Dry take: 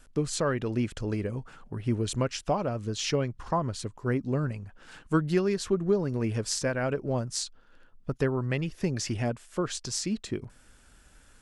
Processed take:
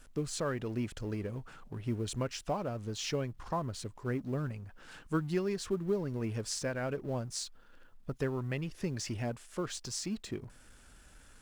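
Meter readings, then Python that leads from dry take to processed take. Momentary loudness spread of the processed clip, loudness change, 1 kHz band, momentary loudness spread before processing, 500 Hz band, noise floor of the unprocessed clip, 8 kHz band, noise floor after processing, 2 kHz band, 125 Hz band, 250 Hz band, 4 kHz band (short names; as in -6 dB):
9 LU, -6.5 dB, -6.5 dB, 9 LU, -6.5 dB, -57 dBFS, -6.0 dB, -58 dBFS, -6.5 dB, -6.5 dB, -6.5 dB, -6.0 dB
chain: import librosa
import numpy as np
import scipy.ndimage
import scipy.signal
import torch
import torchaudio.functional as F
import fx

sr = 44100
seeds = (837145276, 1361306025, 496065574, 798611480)

y = fx.law_mismatch(x, sr, coded='mu')
y = F.gain(torch.from_numpy(y), -7.5).numpy()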